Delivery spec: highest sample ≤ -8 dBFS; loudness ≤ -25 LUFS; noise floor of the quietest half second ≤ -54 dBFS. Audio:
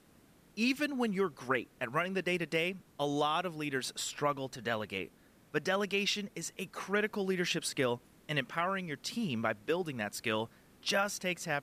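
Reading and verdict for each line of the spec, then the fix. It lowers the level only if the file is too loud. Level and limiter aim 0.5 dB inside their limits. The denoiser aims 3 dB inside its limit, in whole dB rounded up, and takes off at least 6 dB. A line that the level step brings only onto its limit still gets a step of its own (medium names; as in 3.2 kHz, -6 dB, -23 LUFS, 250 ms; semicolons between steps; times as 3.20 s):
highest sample -17.0 dBFS: pass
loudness -34.5 LUFS: pass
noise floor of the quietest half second -63 dBFS: pass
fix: none needed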